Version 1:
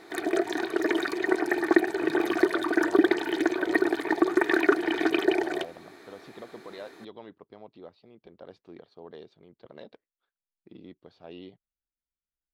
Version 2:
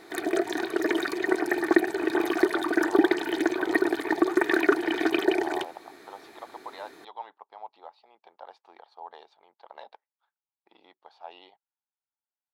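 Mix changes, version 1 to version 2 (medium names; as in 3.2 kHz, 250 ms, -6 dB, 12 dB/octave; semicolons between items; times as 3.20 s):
speech: add resonant high-pass 850 Hz, resonance Q 6.5; master: add treble shelf 9 kHz +5.5 dB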